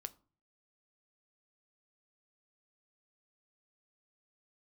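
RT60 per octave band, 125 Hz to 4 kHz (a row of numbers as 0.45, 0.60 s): 0.70, 0.55, 0.40, 0.40, 0.30, 0.25 s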